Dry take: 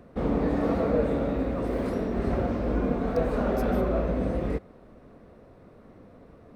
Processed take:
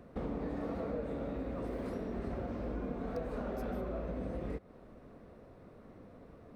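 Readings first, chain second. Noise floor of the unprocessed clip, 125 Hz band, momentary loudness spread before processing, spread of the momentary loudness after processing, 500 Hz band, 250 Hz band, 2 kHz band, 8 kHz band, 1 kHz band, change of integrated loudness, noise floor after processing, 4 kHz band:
−52 dBFS, −12.0 dB, 4 LU, 17 LU, −12.0 dB, −12.0 dB, −12.0 dB, can't be measured, −12.0 dB, −12.0 dB, −56 dBFS, −11.5 dB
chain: downward compressor 4 to 1, threshold −33 dBFS, peak gain reduction 11.5 dB
level −3.5 dB

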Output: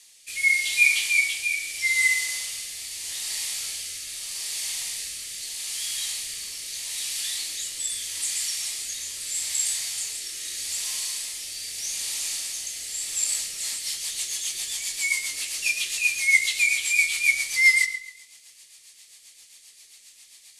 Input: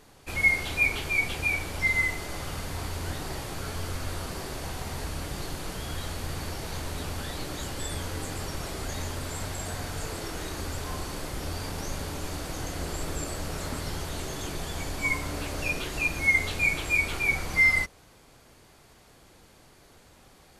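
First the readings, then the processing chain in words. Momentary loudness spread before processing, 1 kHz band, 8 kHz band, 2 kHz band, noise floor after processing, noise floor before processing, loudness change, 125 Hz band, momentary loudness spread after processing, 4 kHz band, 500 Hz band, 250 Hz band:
13 LU, −16.0 dB, +13.5 dB, +3.5 dB, −53 dBFS, −56 dBFS, +5.0 dB, below −25 dB, 13 LU, +9.0 dB, below −15 dB, below −20 dB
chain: flat-topped bell 4,200 Hz +12.5 dB 2.8 octaves
on a send: bucket-brigade delay 68 ms, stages 2,048, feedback 56%, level −11 dB
on the sum: four-comb reverb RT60 0.59 s, combs from 26 ms, DRR 9 dB
rotating-speaker cabinet horn 0.8 Hz, later 7.5 Hz, at 0:13.21
first-order pre-emphasis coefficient 0.97
notch filter 1,500 Hz, Q 6
level +3.5 dB

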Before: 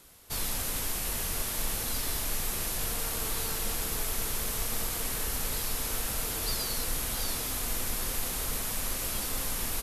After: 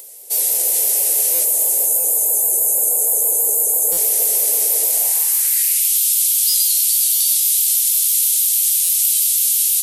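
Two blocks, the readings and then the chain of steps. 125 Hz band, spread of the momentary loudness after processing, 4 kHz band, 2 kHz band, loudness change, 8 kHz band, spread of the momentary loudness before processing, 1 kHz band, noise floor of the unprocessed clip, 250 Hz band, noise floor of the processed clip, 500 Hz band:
below −20 dB, 1 LU, +10.0 dB, 0.0 dB, +18.0 dB, +19.0 dB, 1 LU, −0.5 dB, −34 dBFS, can't be measured, −18 dBFS, +8.0 dB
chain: gain on a spectral selection 0:01.45–0:03.92, 1,100–6,300 Hz −17 dB
drawn EQ curve 130 Hz 0 dB, 380 Hz +15 dB, 830 Hz +5 dB, 1,300 Hz −11 dB, 2,000 Hz +3 dB, 3,600 Hz +2 dB, 6,200 Hz +9 dB, 8,800 Hz +14 dB, 13,000 Hz +12 dB
on a send: delay that swaps between a low-pass and a high-pass 209 ms, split 1,100 Hz, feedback 60%, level −2.5 dB
on the sum: pitch vibrato 6.2 Hz 79 cents
upward compression, threshold −40 dBFS
spectral tilt +3 dB per octave
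hum removal 66.58 Hz, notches 30
high-pass filter sweep 530 Hz → 3,300 Hz, 0:04.86–0:05.96
buffer that repeats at 0:01.34/0:01.99/0:03.92/0:06.49/0:07.15/0:08.84, samples 256, times 8
level −4.5 dB

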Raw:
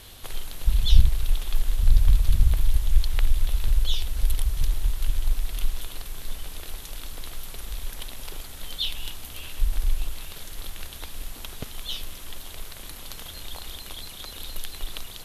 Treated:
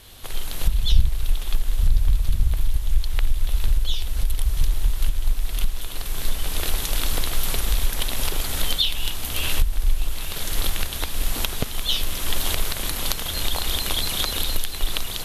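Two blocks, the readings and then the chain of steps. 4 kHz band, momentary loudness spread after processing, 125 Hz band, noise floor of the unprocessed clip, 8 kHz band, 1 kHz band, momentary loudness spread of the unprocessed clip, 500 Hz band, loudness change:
+8.5 dB, 6 LU, +1.5 dB, −41 dBFS, +10.0 dB, +10.0 dB, 16 LU, +10.0 dB, +4.5 dB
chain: camcorder AGC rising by 17 dB per second
level −1.5 dB

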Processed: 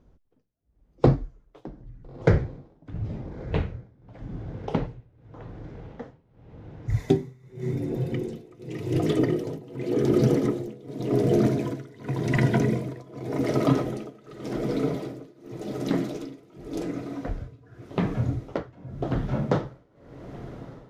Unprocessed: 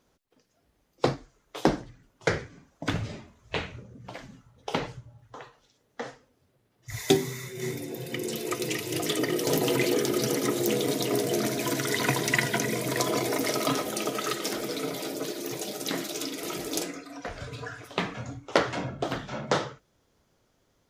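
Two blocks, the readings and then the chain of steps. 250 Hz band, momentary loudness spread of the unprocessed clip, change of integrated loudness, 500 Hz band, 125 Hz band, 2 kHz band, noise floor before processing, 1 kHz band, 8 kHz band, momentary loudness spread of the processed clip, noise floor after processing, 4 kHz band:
+4.5 dB, 16 LU, +2.0 dB, +1.0 dB, +9.5 dB, −7.5 dB, −70 dBFS, −3.5 dB, −16.5 dB, 20 LU, −61 dBFS, −12.5 dB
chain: spectral tilt −4.5 dB per octave
feedback delay with all-pass diffusion 1,362 ms, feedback 67%, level −15.5 dB
amplitude tremolo 0.88 Hz, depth 95%

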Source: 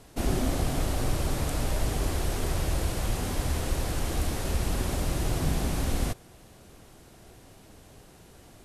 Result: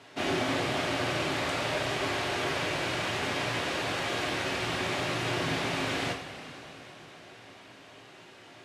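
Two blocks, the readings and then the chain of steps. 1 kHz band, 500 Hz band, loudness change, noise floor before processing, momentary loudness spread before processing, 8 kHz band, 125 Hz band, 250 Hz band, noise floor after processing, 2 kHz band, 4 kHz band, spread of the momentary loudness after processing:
+4.5 dB, +2.5 dB, 0.0 dB, −53 dBFS, 2 LU, −5.0 dB, −8.0 dB, −1.5 dB, −52 dBFS, +9.5 dB, +6.5 dB, 18 LU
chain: Chebyshev band-pass filter 130–2,500 Hz, order 2
spectral tilt +3.5 dB per octave
coupled-rooms reverb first 0.37 s, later 4.5 s, from −17 dB, DRR −0.5 dB
level +3 dB

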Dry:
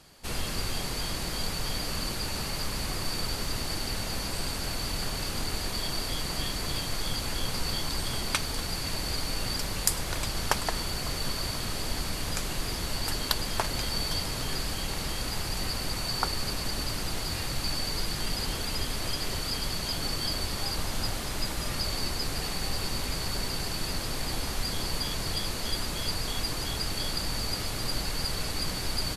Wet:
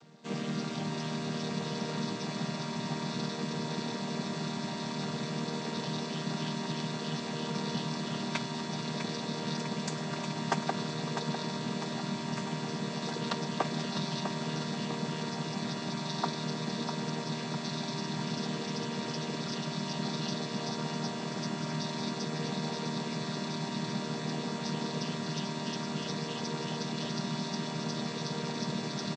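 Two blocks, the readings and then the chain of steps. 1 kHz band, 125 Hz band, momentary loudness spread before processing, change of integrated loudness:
−0.5 dB, −1.0 dB, 3 LU, −4.0 dB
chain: channel vocoder with a chord as carrier major triad, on D#3
on a send: repeating echo 651 ms, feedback 57%, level −7.5 dB

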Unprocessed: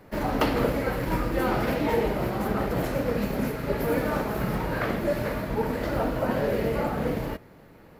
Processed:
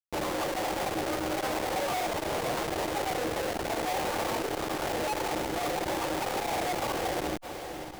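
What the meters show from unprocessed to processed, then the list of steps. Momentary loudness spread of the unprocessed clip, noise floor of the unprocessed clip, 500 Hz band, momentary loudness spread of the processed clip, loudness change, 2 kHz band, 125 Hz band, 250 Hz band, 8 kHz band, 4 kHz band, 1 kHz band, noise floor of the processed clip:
4 LU, −51 dBFS, −4.5 dB, 2 LU, −4.0 dB, −2.0 dB, −12.0 dB, −7.5 dB, +8.5 dB, +4.5 dB, +0.5 dB, −40 dBFS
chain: Bessel low-pass filter 1,100 Hz, order 8
mains-hum notches 50/100/150/200 Hz
gate on every frequency bin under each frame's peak −15 dB strong
parametric band 160 Hz −12 dB 0.33 octaves
notch filter 720 Hz, Q 12
frequency shifter +270 Hz
comparator with hysteresis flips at −39.5 dBFS
on a send: feedback delay with all-pass diffusion 588 ms, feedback 41%, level −10 dB
on the sum: saturating transformer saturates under 410 Hz

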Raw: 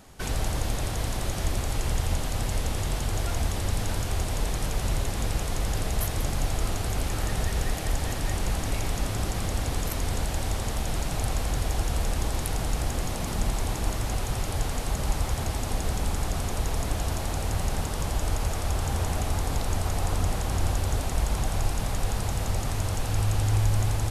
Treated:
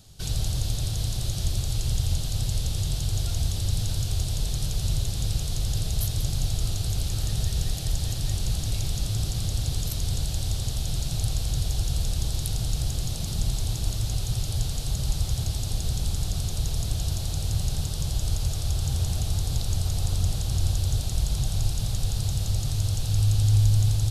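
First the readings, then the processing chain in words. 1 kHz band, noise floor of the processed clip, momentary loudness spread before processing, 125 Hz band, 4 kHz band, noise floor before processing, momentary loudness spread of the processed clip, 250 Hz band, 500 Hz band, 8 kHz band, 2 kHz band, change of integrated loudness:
−11.5 dB, −30 dBFS, 2 LU, +3.5 dB, +3.0 dB, −31 dBFS, 3 LU, −3.0 dB, −9.0 dB, +1.0 dB, −10.0 dB, +1.5 dB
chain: octave-band graphic EQ 125/250/500/1,000/2,000/4,000 Hz +8/−9/−5/−11/−12/+8 dB

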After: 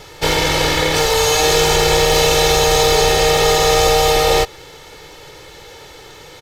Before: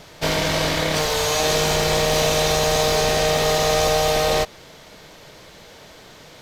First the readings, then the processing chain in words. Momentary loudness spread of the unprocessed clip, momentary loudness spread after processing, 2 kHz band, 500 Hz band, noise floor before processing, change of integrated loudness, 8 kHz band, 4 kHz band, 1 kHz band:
3 LU, 3 LU, +5.5 dB, +5.5 dB, −45 dBFS, +5.5 dB, +5.5 dB, +6.0 dB, +6.0 dB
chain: comb filter 2.3 ms, depth 71%
level +4 dB

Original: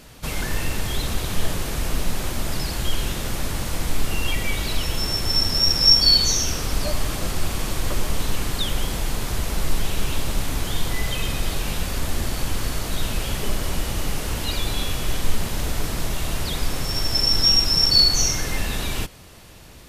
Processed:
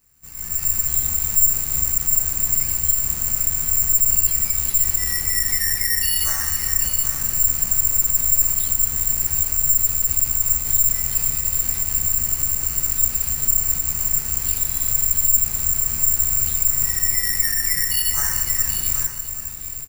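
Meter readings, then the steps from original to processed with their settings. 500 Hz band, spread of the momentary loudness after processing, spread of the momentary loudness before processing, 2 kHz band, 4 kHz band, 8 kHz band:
−13.5 dB, 4 LU, 13 LU, −1.0 dB, −11.5 dB, +12.0 dB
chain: guitar amp tone stack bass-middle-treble 6-0-2
automatic gain control gain up to 16.5 dB
brickwall limiter −12 dBFS, peak gain reduction 8 dB
double-tracking delay 14 ms −4 dB
single-tap delay 408 ms −13 dB
bad sample-rate conversion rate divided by 6×, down none, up zero stuff
parametric band 3,400 Hz −11.5 dB 0.44 octaves
on a send: single-tap delay 780 ms −9 dB
on the sum: level −10 dB

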